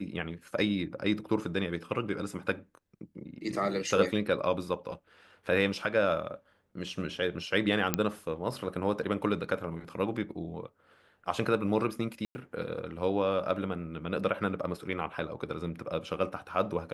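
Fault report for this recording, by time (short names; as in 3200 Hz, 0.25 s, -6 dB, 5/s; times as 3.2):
7.94 pop -9 dBFS
12.25–12.35 gap 0.1 s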